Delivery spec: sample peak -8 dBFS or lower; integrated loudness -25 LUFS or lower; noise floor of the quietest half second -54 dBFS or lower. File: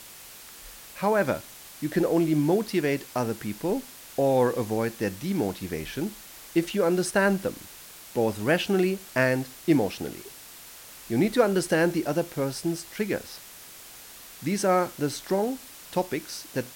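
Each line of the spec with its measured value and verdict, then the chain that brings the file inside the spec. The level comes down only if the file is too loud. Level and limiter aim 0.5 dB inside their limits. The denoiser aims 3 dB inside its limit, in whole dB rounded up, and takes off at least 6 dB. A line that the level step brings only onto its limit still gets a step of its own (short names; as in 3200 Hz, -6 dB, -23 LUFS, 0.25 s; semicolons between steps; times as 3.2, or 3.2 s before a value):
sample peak -8.5 dBFS: OK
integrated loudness -26.5 LUFS: OK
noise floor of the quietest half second -46 dBFS: fail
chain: denoiser 11 dB, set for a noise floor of -46 dBFS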